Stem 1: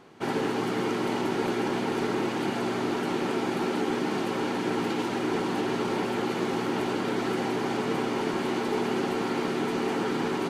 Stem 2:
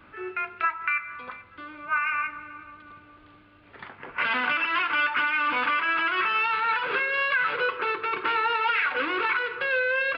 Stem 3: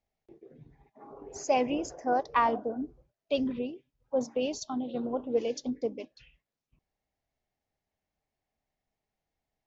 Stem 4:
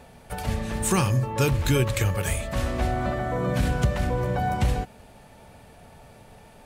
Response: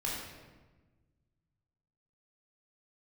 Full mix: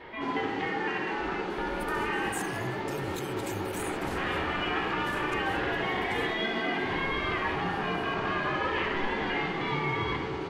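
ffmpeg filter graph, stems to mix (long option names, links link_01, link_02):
-filter_complex "[0:a]lowpass=3800,volume=-8.5dB,asplit=2[link_01][link_02];[link_02]volume=-11dB[link_03];[1:a]equalizer=frequency=250:width_type=o:width=1:gain=7,equalizer=frequency=500:width_type=o:width=1:gain=4,equalizer=frequency=1000:width_type=o:width=1:gain=5,acompressor=threshold=-30dB:ratio=6,aeval=exprs='val(0)*sin(2*PI*460*n/s+460*0.45/0.31*sin(2*PI*0.31*n/s))':channel_layout=same,volume=1dB,asplit=2[link_04][link_05];[link_05]volume=-4.5dB[link_06];[3:a]highpass=110,adelay=1500,volume=-7dB[link_07];[link_04][link_07]amix=inputs=2:normalize=0,alimiter=level_in=7dB:limit=-24dB:level=0:latency=1,volume=-7dB,volume=0dB[link_08];[4:a]atrim=start_sample=2205[link_09];[link_03][link_06]amix=inputs=2:normalize=0[link_10];[link_10][link_09]afir=irnorm=-1:irlink=0[link_11];[link_01][link_08][link_11]amix=inputs=3:normalize=0,highshelf=frequency=5100:gain=5.5"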